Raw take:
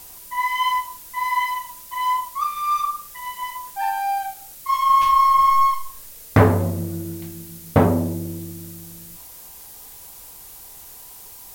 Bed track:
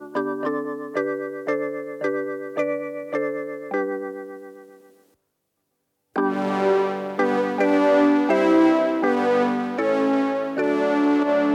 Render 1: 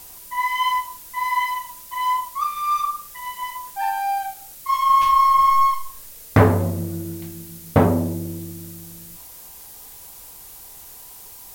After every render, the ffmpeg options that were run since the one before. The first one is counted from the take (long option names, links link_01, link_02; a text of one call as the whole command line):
ffmpeg -i in.wav -af anull out.wav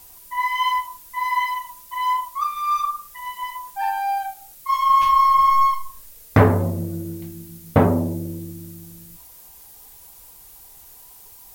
ffmpeg -i in.wav -af "afftdn=noise_reduction=6:noise_floor=-42" out.wav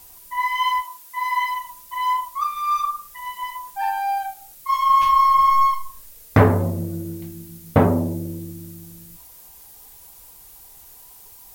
ffmpeg -i in.wav -filter_complex "[0:a]asettb=1/sr,asplit=3[link_01][link_02][link_03];[link_01]atrim=end=0.824[link_04];[link_02]atrim=start=0.82:end=1.42,asetpts=PTS-STARTPTS,afade=type=in:duration=0.004:curve=qsin,afade=type=out:start_time=0.596:duration=0.004:curve=qsin,highpass=frequency=420:poles=1[link_05];[link_03]atrim=start=1.416[link_06];[link_04][link_05]acrossfade=duration=0.004:curve1=hsin:curve2=qsin[link_07];[link_07][link_06]acrossfade=duration=0.004:curve1=qsin:curve2=hsin" out.wav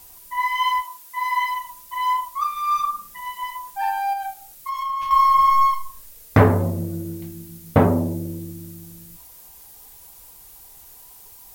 ffmpeg -i in.wav -filter_complex "[0:a]asettb=1/sr,asplit=3[link_01][link_02][link_03];[link_01]atrim=end=2.724[link_04];[link_02]atrim=start=2.72:end=3.21,asetpts=PTS-STARTPTS,afade=type=in:duration=0.004:curve=qsin,afade=type=out:start_time=0.486:duration=0.004:curve=qsin,equalizer=frequency=210:width=1.4:gain=11.5[link_05];[link_03]atrim=start=3.206[link_06];[link_04][link_05]acrossfade=duration=0.004:curve1=hsin:curve2=qsin[link_07];[link_07][link_06]acrossfade=duration=0.004:curve1=qsin:curve2=hsin,asettb=1/sr,asplit=3[link_08][link_09][link_10];[link_08]atrim=end=4.134[link_11];[link_09]atrim=start=4.13:end=5.11,asetpts=PTS-STARTPTS,afade=type=in:duration=0.004:curve=qsin,afade=type=out:start_time=0.976:duration=0.004:curve=qsin,acompressor=threshold=-24dB:ratio=6:attack=3.2:release=140:knee=1:detection=peak[link_12];[link_10]atrim=start=5.106[link_13];[link_11][link_12]acrossfade=duration=0.004:curve1=hsin:curve2=qsin[link_14];[link_14][link_13]acrossfade=duration=0.004:curve1=qsin:curve2=hsin" out.wav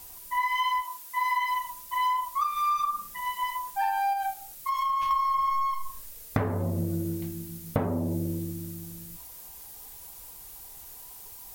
ffmpeg -i in.wav -af "acompressor=threshold=-23dB:ratio=20" out.wav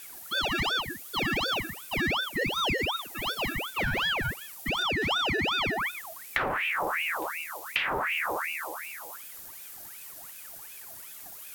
ffmpeg -i in.wav -filter_complex "[0:a]asplit=2[link_01][link_02];[link_02]aeval=exprs='0.0398*(abs(mod(val(0)/0.0398+3,4)-2)-1)':channel_layout=same,volume=-5dB[link_03];[link_01][link_03]amix=inputs=2:normalize=0,aeval=exprs='val(0)*sin(2*PI*1600*n/s+1600*0.6/2.7*sin(2*PI*2.7*n/s))':channel_layout=same" out.wav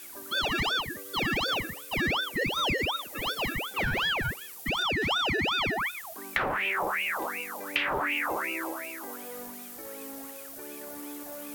ffmpeg -i in.wav -i bed.wav -filter_complex "[1:a]volume=-23.5dB[link_01];[0:a][link_01]amix=inputs=2:normalize=0" out.wav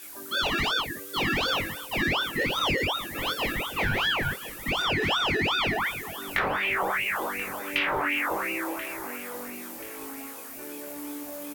ffmpeg -i in.wav -filter_complex "[0:a]asplit=2[link_01][link_02];[link_02]adelay=21,volume=-2.5dB[link_03];[link_01][link_03]amix=inputs=2:normalize=0,asplit=2[link_04][link_05];[link_05]adelay=1033,lowpass=frequency=3700:poles=1,volume=-14dB,asplit=2[link_06][link_07];[link_07]adelay=1033,lowpass=frequency=3700:poles=1,volume=0.45,asplit=2[link_08][link_09];[link_09]adelay=1033,lowpass=frequency=3700:poles=1,volume=0.45,asplit=2[link_10][link_11];[link_11]adelay=1033,lowpass=frequency=3700:poles=1,volume=0.45[link_12];[link_04][link_06][link_08][link_10][link_12]amix=inputs=5:normalize=0" out.wav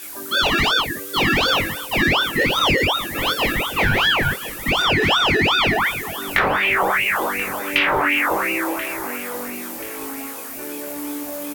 ffmpeg -i in.wav -af "volume=8.5dB" out.wav